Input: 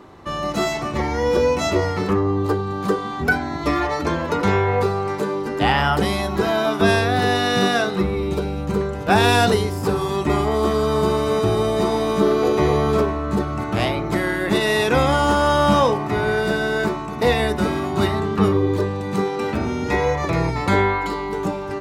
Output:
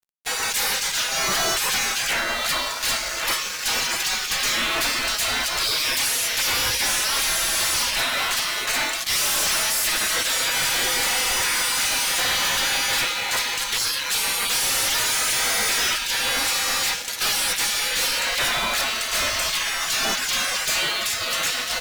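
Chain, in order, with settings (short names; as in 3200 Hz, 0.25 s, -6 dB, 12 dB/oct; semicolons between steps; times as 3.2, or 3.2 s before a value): spectral gate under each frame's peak -30 dB weak; fuzz box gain 49 dB, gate -57 dBFS; gain -7 dB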